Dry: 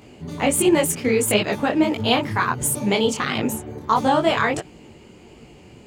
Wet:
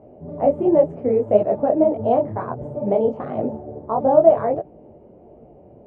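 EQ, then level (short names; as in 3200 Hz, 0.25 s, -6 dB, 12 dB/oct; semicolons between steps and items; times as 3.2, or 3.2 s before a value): synth low-pass 630 Hz, resonance Q 4.9; air absorption 52 m; -4.0 dB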